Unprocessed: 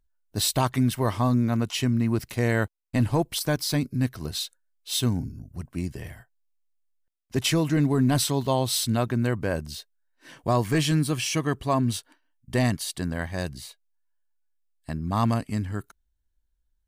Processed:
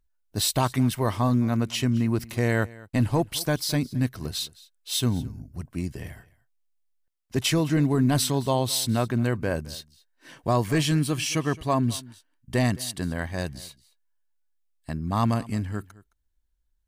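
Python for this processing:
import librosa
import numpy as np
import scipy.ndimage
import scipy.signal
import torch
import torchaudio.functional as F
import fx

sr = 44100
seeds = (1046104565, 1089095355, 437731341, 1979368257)

y = x + 10.0 ** (-21.0 / 20.0) * np.pad(x, (int(215 * sr / 1000.0), 0))[:len(x)]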